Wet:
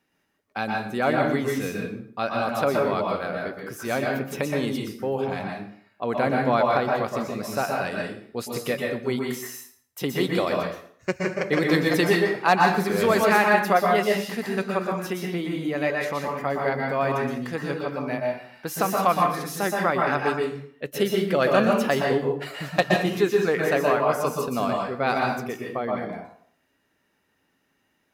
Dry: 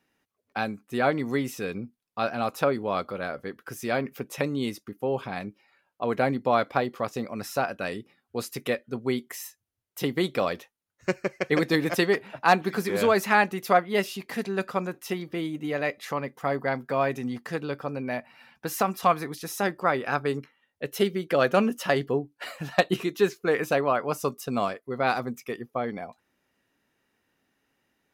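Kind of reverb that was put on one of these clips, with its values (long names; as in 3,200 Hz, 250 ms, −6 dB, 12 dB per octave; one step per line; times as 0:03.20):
dense smooth reverb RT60 0.56 s, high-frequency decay 0.8×, pre-delay 110 ms, DRR −0.5 dB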